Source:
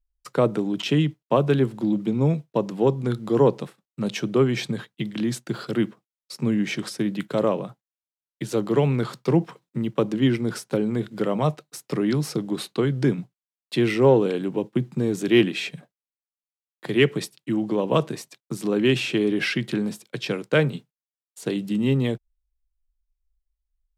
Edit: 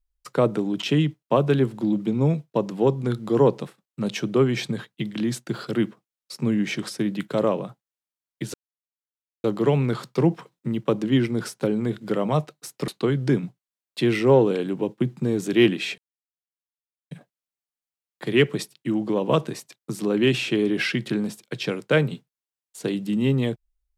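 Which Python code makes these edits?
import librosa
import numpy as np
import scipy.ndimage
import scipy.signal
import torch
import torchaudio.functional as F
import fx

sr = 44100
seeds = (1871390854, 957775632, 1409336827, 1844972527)

y = fx.edit(x, sr, fx.insert_silence(at_s=8.54, length_s=0.9),
    fx.cut(start_s=11.98, length_s=0.65),
    fx.insert_silence(at_s=15.73, length_s=1.13), tone=tone)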